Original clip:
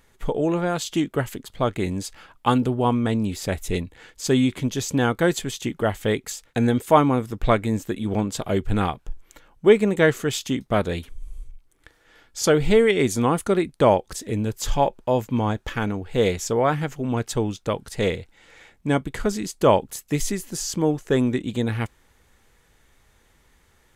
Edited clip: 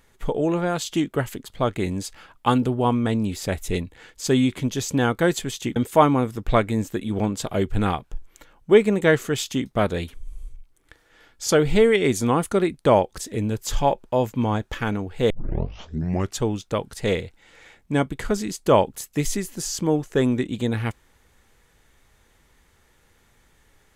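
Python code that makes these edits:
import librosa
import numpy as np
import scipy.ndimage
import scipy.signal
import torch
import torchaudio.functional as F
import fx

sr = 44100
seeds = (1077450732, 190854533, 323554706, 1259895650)

y = fx.edit(x, sr, fx.cut(start_s=5.76, length_s=0.95),
    fx.tape_start(start_s=16.25, length_s=1.12), tone=tone)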